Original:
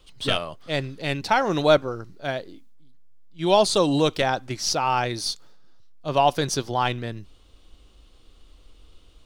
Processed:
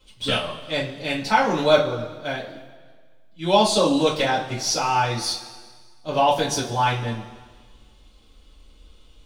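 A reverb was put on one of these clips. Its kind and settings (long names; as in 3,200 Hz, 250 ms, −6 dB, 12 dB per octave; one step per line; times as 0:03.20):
coupled-rooms reverb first 0.25 s, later 1.6 s, from −17 dB, DRR −7.5 dB
level −6.5 dB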